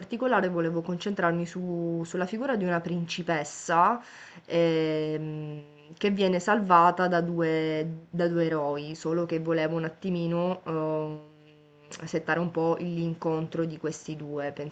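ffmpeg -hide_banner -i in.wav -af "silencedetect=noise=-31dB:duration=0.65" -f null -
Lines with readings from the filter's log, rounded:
silence_start: 11.15
silence_end: 11.92 | silence_duration: 0.77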